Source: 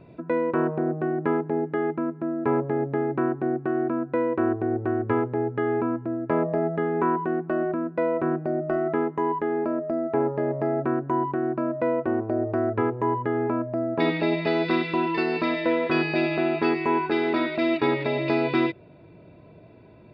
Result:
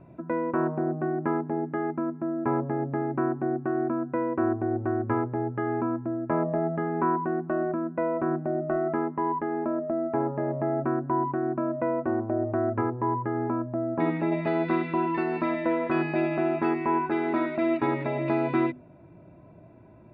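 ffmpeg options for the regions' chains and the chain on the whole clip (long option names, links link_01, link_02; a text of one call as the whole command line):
ffmpeg -i in.wav -filter_complex "[0:a]asettb=1/sr,asplit=3[link_01][link_02][link_03];[link_01]atrim=end=12.814[link_04];[link_02]atrim=start=12.81:end=14.32,asetpts=PTS-STARTPTS,afade=type=in:duration=0.004:curve=qsin,afade=type=out:start_time=1.506:duration=0.004:curve=qsin,highshelf=frequency=4200:gain=-12,bandreject=frequency=630:width=17[link_05];[link_03]atrim=start=14.316[link_06];[link_04][link_05]acrossfade=duration=0.004:curve1=hsin:curve2=qsin[link_07];[link_07][link_06]acrossfade=duration=0.004:curve1=qsin:curve2=hsin,lowpass=1600,equalizer=frequency=450:width_type=o:width=0.28:gain=-11.5,bandreject=frequency=50:width_type=h:width=6,bandreject=frequency=100:width_type=h:width=6,bandreject=frequency=150:width_type=h:width=6,bandreject=frequency=200:width_type=h:width=6,bandreject=frequency=250:width_type=h:width=6" out.wav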